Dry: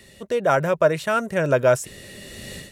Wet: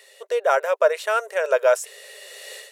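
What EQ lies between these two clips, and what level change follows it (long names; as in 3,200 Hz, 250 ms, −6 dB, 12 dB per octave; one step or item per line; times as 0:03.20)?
linear-phase brick-wall high-pass 400 Hz
0.0 dB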